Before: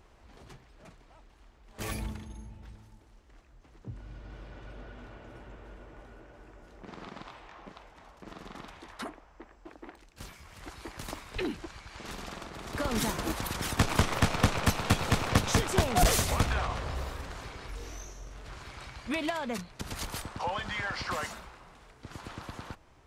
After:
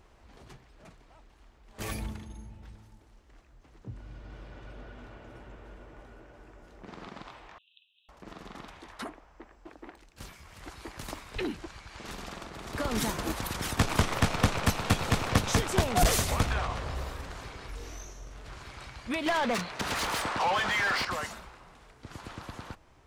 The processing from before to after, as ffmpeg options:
-filter_complex "[0:a]asettb=1/sr,asplit=3[s0][s1][s2];[s0]atrim=end=7.584[s3];[s1]atrim=start=7.58:end=8.09,asetpts=PTS-STARTPTS,afade=t=in:d=0.004:c=qsin,afade=t=out:st=0.506:d=0.004:c=qsin,asuperpass=centerf=3200:order=20:qfactor=2.3[s4];[s2]atrim=start=8.086[s5];[s3][s4]acrossfade=d=0.004:c1=hsin:c2=qsin[s6];[s6][s5]acrossfade=d=0.004:c1=qsin:c2=hsin,asettb=1/sr,asplit=3[s7][s8][s9];[s7]atrim=end=19.264[s10];[s8]atrim=start=19.26:end=21.05,asetpts=PTS-STARTPTS,afade=t=in:d=0.004:c=qsin,afade=t=out:st=1.786:d=0.004:c=qsin,asplit=2[s11][s12];[s12]highpass=f=720:p=1,volume=15.8,asoftclip=type=tanh:threshold=0.1[s13];[s11][s13]amix=inputs=2:normalize=0,lowpass=f=3100:p=1,volume=0.501[s14];[s9]atrim=start=21.046[s15];[s10][s14]acrossfade=d=0.004:c1=hsin:c2=qsin[s16];[s16][s15]acrossfade=d=0.004:c1=qsin:c2=hsin"

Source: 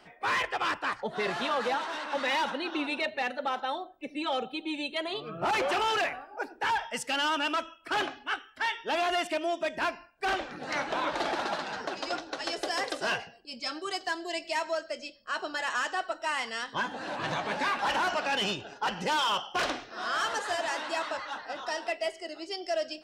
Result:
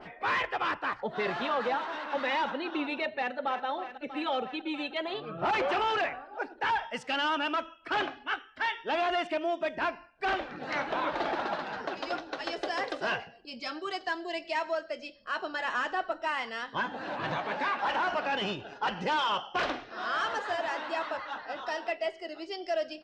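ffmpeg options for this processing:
-filter_complex "[0:a]asplit=2[s0][s1];[s1]afade=t=in:st=3.1:d=0.01,afade=t=out:st=3.65:d=0.01,aecho=0:1:320|640|960|1280|1600|1920|2240|2560|2880|3200|3520|3840:0.251189|0.200951|0.160761|0.128609|0.102887|0.0823095|0.0658476|0.0526781|0.0421425|0.033714|0.0269712|0.0215769[s2];[s0][s2]amix=inputs=2:normalize=0,asettb=1/sr,asplit=3[s3][s4][s5];[s3]atrim=end=15.644[s6];[s4]atrim=start=15.64:end=16.28,asetpts=PTS-STARTPTS,afade=t=in:d=0.004:c=qsin,afade=t=out:st=0.636:d=0.004:c=qsin,lowshelf=f=260:g=9[s7];[s5]atrim=start=16.276[s8];[s6][s7]acrossfade=d=0.004:c1=hsin:c2=qsin[s9];[s9][s8]acrossfade=d=0.004:c1=qsin:c2=hsin,asettb=1/sr,asplit=3[s10][s11][s12];[s10]atrim=end=17.384[s13];[s11]atrim=start=17.38:end=18.09,asetpts=PTS-STARTPTS,afade=t=in:d=0.004:c=qsin,afade=t=out:st=0.706:d=0.004:c=qsin,lowshelf=f=170:g=-9.5[s14];[s12]atrim=start=18.086[s15];[s13][s14]acrossfade=d=0.004:c1=hsin:c2=qsin[s16];[s16][s15]acrossfade=d=0.004:c1=qsin:c2=hsin,lowpass=3900,acompressor=mode=upward:threshold=0.0126:ratio=2.5,adynamicequalizer=threshold=0.0112:dfrequency=1900:dqfactor=0.7:tfrequency=1900:tqfactor=0.7:attack=5:release=100:ratio=0.375:range=2:mode=cutabove:tftype=highshelf"

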